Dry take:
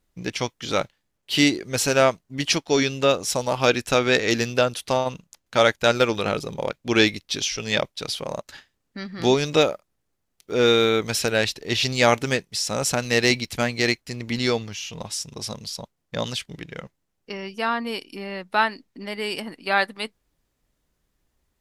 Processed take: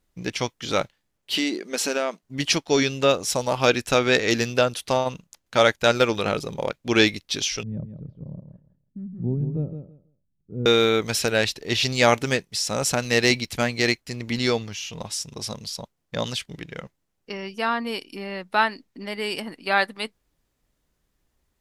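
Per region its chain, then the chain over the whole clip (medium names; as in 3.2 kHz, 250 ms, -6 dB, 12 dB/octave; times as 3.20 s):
1.35–2.23 s: treble shelf 9 kHz -5 dB + compression 5:1, threshold -20 dBFS + brick-wall FIR high-pass 170 Hz
7.63–10.66 s: resonant low-pass 160 Hz, resonance Q 1.7 + feedback delay 163 ms, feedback 18%, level -8.5 dB
whole clip: none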